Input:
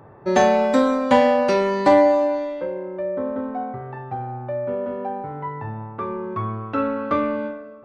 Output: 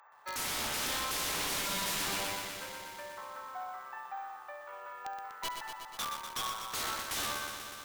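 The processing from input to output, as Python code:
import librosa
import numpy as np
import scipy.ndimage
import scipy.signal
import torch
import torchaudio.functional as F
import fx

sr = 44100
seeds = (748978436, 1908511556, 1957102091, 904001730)

p1 = scipy.signal.sosfilt(scipy.signal.butter(4, 970.0, 'highpass', fs=sr, output='sos'), x)
p2 = (np.mod(10.0 ** (27.5 / 20.0) * p1 + 1.0, 2.0) - 1.0) / 10.0 ** (27.5 / 20.0)
p3 = p2 + fx.echo_feedback(p2, sr, ms=69, feedback_pct=43, wet_db=-15, dry=0)
p4 = np.repeat(p3[::2], 2)[:len(p3)]
p5 = fx.echo_crushed(p4, sr, ms=122, feedback_pct=80, bits=10, wet_db=-6.5)
y = F.gain(torch.from_numpy(p5), -4.0).numpy()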